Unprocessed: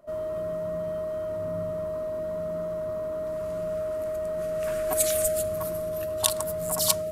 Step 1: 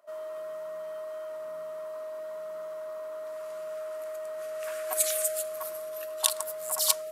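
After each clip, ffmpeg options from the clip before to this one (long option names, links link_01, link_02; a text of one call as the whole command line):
ffmpeg -i in.wav -af "highpass=810,volume=-1dB" out.wav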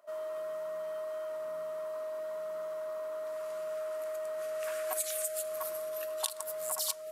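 ffmpeg -i in.wav -af "acompressor=threshold=-31dB:ratio=6" out.wav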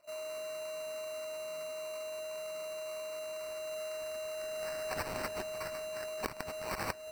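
ffmpeg -i in.wav -af "acrusher=samples=13:mix=1:aa=0.000001,volume=-3dB" out.wav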